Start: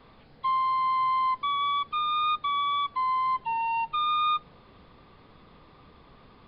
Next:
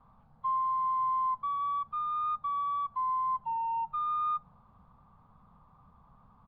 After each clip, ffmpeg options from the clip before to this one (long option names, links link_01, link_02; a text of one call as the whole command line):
ffmpeg -i in.wav -af "firequalizer=gain_entry='entry(200,0);entry(330,-19);entry(820,1);entry(1200,0);entry(1900,-19);entry(4500,-23)':delay=0.05:min_phase=1,volume=-4.5dB" out.wav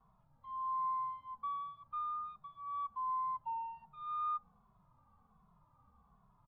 ffmpeg -i in.wav -filter_complex "[0:a]asplit=2[link_01][link_02];[link_02]adelay=2.3,afreqshift=-1.3[link_03];[link_01][link_03]amix=inputs=2:normalize=1,volume=-5.5dB" out.wav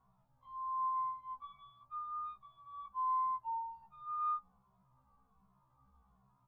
ffmpeg -i in.wav -af "afftfilt=real='re*1.73*eq(mod(b,3),0)':imag='im*1.73*eq(mod(b,3),0)':win_size=2048:overlap=0.75" out.wav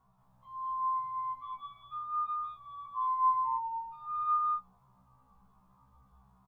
ffmpeg -i in.wav -af "aecho=1:1:177.8|209.9:0.562|0.891,volume=3dB" out.wav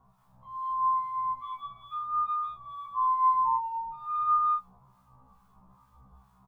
ffmpeg -i in.wav -filter_complex "[0:a]acrossover=split=1200[link_01][link_02];[link_01]aeval=exprs='val(0)*(1-0.7/2+0.7/2*cos(2*PI*2.3*n/s))':channel_layout=same[link_03];[link_02]aeval=exprs='val(0)*(1-0.7/2-0.7/2*cos(2*PI*2.3*n/s))':channel_layout=same[link_04];[link_03][link_04]amix=inputs=2:normalize=0,volume=8.5dB" out.wav